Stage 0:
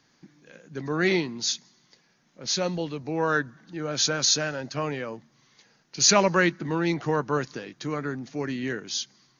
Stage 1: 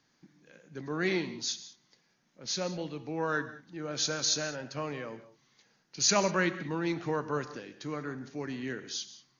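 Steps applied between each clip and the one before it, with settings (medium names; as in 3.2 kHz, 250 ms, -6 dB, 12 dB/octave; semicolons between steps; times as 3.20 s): gated-style reverb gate 220 ms flat, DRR 11.5 dB; trim -7 dB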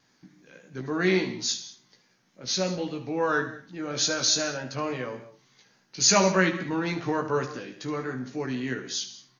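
vibrato 3.5 Hz 37 cents; on a send: early reflections 16 ms -4 dB, 75 ms -11.5 dB; on the sum: trim +4 dB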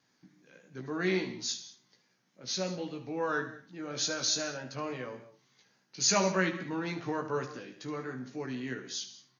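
high-pass 79 Hz; trim -6.5 dB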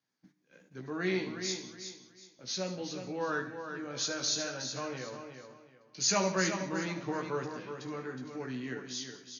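gate -58 dBFS, range -12 dB; on a send: feedback delay 367 ms, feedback 27%, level -8 dB; on the sum: trim -2 dB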